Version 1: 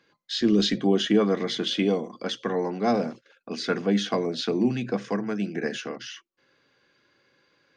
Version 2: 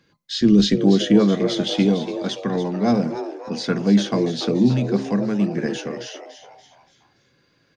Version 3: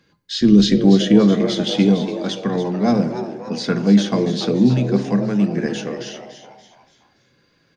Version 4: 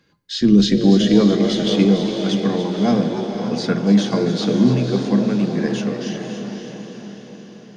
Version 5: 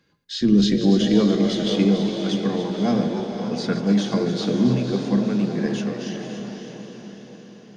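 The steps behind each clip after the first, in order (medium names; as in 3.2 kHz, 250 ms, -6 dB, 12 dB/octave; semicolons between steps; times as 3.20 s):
tone controls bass +13 dB, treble +5 dB; on a send: frequency-shifting echo 287 ms, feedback 43%, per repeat +140 Hz, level -11 dB
on a send at -14 dB: bass shelf 250 Hz +8.5 dB + reverberation RT60 1.3 s, pre-delay 4 ms; on the sum: trim +1.5 dB
echo that smears into a reverb 530 ms, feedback 53%, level -7 dB; trim -1 dB
chunks repeated in reverse 123 ms, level -11 dB; trim -4 dB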